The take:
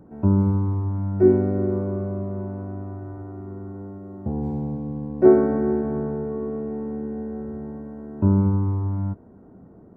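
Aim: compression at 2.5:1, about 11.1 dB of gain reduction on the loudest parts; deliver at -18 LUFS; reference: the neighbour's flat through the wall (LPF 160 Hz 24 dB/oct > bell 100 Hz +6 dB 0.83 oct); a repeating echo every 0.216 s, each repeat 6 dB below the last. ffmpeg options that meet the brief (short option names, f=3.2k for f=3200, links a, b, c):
-af "acompressor=threshold=-25dB:ratio=2.5,lowpass=f=160:w=0.5412,lowpass=f=160:w=1.3066,equalizer=f=100:t=o:w=0.83:g=6,aecho=1:1:216|432|648|864|1080|1296:0.501|0.251|0.125|0.0626|0.0313|0.0157,volume=8.5dB"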